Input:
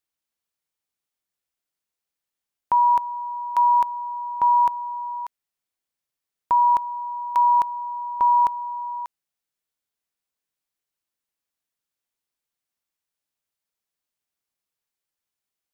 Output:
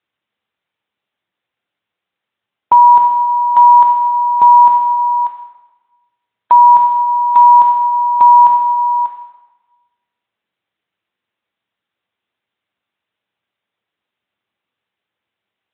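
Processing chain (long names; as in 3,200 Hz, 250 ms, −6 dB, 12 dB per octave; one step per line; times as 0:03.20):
0:02.75–0:03.35: dynamic equaliser 430 Hz, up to +3 dB, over −41 dBFS, Q 2.6
dense smooth reverb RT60 1.1 s, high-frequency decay 0.95×, DRR 6 dB
boost into a limiter +13.5 dB
level −1 dB
Speex 24 kbit/s 8,000 Hz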